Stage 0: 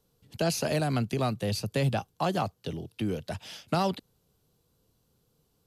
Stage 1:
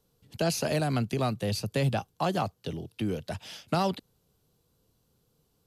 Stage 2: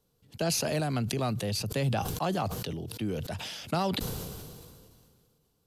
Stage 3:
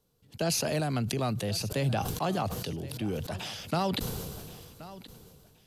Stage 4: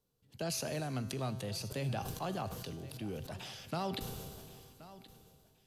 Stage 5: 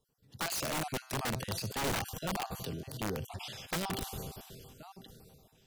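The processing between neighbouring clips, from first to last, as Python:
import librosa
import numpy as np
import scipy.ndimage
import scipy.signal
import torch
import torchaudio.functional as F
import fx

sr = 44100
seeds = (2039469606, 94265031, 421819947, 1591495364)

y1 = x
y2 = fx.sustainer(y1, sr, db_per_s=28.0)
y2 = y2 * 10.0 ** (-2.5 / 20.0)
y3 = fx.echo_feedback(y2, sr, ms=1075, feedback_pct=26, wet_db=-17)
y4 = fx.comb_fb(y3, sr, f0_hz=130.0, decay_s=1.8, harmonics='all', damping=0.0, mix_pct=70)
y4 = y4 * 10.0 ** (1.5 / 20.0)
y5 = fx.spec_dropout(y4, sr, seeds[0], share_pct=31)
y5 = (np.mod(10.0 ** (32.5 / 20.0) * y5 + 1.0, 2.0) - 1.0) / 10.0 ** (32.5 / 20.0)
y5 = y5 * 10.0 ** (4.5 / 20.0)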